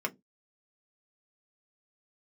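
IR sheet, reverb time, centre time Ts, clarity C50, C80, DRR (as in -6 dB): not exponential, 5 ms, 27.0 dB, 36.0 dB, 1.5 dB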